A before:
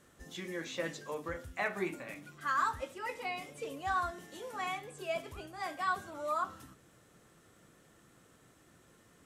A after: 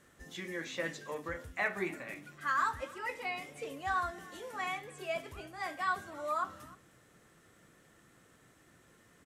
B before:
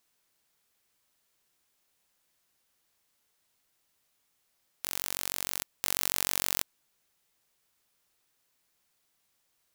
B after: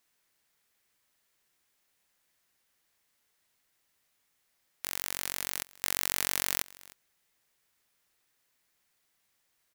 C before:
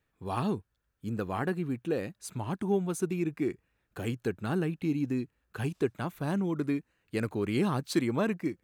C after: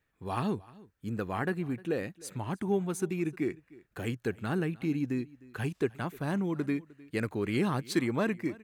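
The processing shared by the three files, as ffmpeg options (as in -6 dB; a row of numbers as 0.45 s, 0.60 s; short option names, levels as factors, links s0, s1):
-af "equalizer=f=1900:w=2.2:g=4.5,aecho=1:1:306:0.0794,volume=0.891"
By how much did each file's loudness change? +0.5 LU, -0.5 LU, -1.0 LU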